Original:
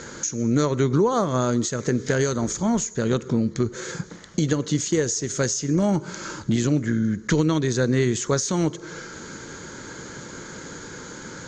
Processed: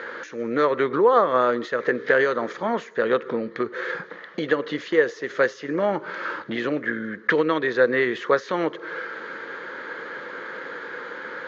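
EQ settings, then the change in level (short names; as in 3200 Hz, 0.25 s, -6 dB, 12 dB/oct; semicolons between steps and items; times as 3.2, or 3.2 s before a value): air absorption 80 m; speaker cabinet 450–3500 Hz, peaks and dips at 500 Hz +7 dB, 1200 Hz +5 dB, 1800 Hz +9 dB; +3.0 dB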